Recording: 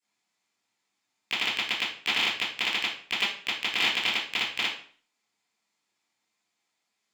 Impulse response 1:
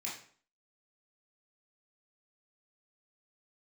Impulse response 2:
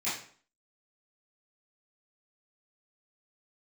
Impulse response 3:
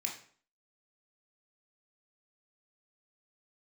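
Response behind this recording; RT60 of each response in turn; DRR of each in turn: 2; 0.50, 0.50, 0.50 s; -6.5, -14.0, -1.0 dB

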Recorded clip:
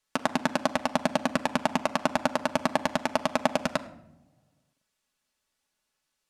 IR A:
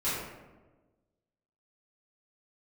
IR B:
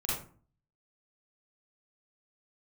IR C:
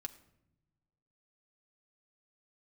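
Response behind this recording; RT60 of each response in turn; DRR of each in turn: C; 1.3 s, 0.45 s, not exponential; -14.0, -6.5, 3.5 dB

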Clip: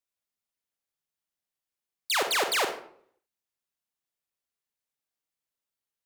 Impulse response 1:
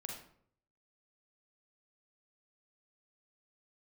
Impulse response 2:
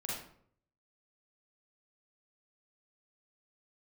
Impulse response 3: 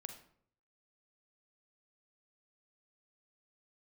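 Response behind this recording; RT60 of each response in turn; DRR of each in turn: 3; 0.60, 0.60, 0.60 s; 0.0, -6.0, 6.0 dB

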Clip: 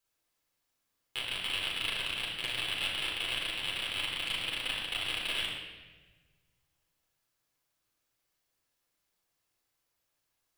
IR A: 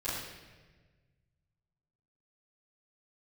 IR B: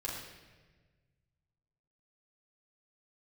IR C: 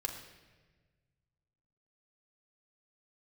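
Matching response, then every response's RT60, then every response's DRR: B; 1.4, 1.4, 1.4 s; -13.5, -5.0, 3.0 dB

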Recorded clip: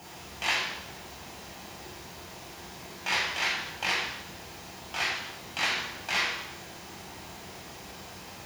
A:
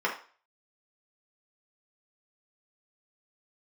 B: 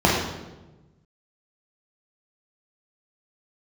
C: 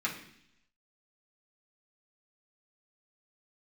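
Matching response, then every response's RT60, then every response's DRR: B; 0.40, 1.1, 0.70 s; -4.5, -3.5, -5.5 dB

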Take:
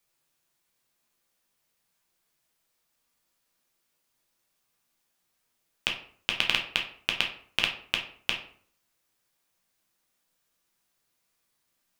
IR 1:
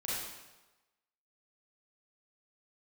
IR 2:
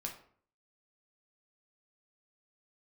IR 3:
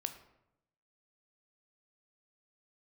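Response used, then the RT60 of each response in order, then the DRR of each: 2; 1.1, 0.55, 0.85 s; -8.5, 0.5, 7.5 dB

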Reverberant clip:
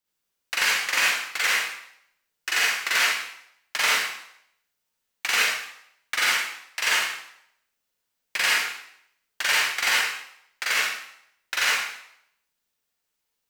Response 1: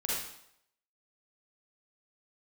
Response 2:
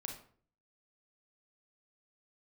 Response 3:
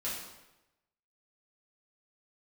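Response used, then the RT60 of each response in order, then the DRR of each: 1; 0.75, 0.50, 0.95 s; -6.0, 1.5, -8.5 dB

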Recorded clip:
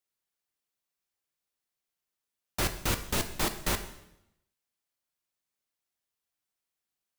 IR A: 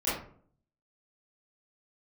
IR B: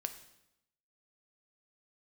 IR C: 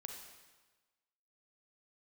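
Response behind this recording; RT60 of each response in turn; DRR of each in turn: B; 0.55, 0.85, 1.3 s; -12.5, 7.5, 2.5 dB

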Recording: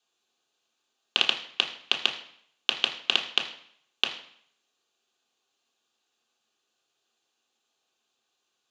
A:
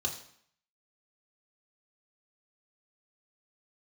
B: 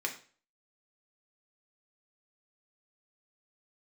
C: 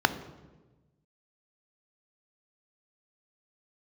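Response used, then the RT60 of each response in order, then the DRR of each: A; 0.65, 0.40, 1.2 s; 0.0, 1.0, 11.0 dB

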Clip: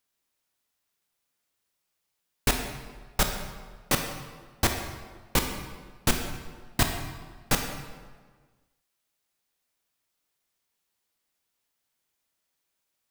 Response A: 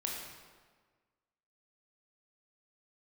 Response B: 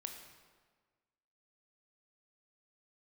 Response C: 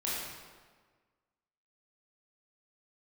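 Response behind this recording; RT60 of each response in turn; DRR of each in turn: B; 1.5, 1.5, 1.5 s; -2.0, 4.0, -7.5 dB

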